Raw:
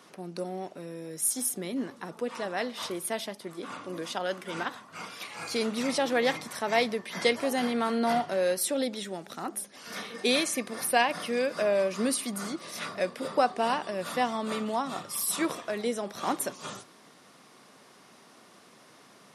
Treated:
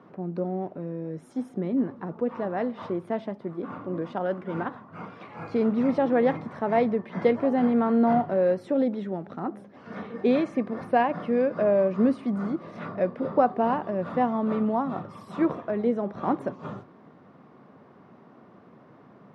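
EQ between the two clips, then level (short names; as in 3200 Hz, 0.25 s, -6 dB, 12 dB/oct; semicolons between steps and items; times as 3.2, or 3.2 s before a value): LPF 1200 Hz 12 dB/oct; low shelf 230 Hz +11.5 dB; +2.5 dB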